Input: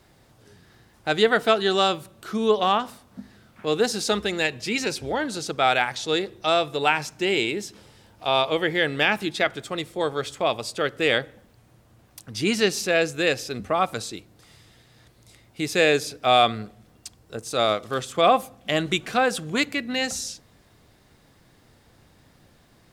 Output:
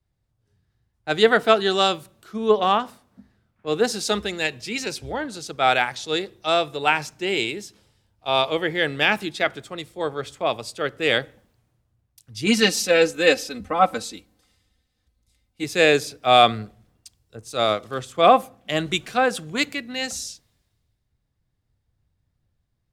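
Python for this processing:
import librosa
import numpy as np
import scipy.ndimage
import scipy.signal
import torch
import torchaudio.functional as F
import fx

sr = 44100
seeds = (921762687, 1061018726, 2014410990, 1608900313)

y = fx.comb(x, sr, ms=3.9, depth=0.82, at=(12.46, 15.64))
y = fx.band_widen(y, sr, depth_pct=70)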